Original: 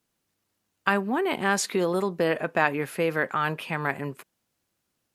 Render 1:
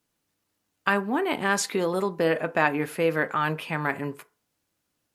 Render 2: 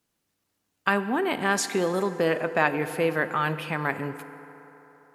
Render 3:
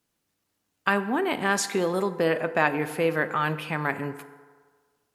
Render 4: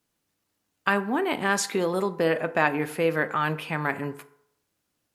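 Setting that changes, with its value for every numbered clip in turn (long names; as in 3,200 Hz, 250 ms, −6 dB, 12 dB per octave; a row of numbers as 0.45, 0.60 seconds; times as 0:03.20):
feedback delay network reverb, RT60: 0.34, 3.8, 1.6, 0.72 seconds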